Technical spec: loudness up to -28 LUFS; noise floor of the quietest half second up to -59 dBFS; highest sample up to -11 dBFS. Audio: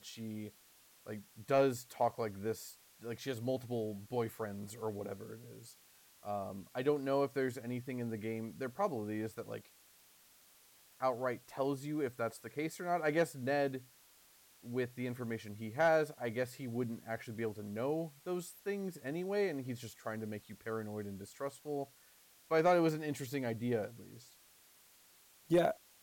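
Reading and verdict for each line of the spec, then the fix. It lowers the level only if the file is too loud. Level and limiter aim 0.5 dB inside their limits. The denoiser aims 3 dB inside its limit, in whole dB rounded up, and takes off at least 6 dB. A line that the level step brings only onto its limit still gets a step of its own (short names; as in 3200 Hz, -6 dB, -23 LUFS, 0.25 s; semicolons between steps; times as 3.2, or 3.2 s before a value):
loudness -37.5 LUFS: OK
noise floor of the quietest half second -65 dBFS: OK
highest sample -21.5 dBFS: OK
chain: none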